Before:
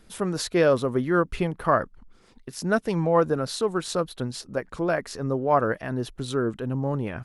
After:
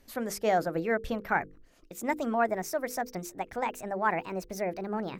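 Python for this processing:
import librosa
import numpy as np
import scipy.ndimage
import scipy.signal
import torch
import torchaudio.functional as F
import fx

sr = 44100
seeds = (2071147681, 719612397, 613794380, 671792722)

y = fx.speed_glide(x, sr, from_pct=124, to_pct=155)
y = fx.hum_notches(y, sr, base_hz=50, count=10)
y = fx.dynamic_eq(y, sr, hz=3400.0, q=1.1, threshold_db=-41.0, ratio=4.0, max_db=-5)
y = y * librosa.db_to_amplitude(-5.5)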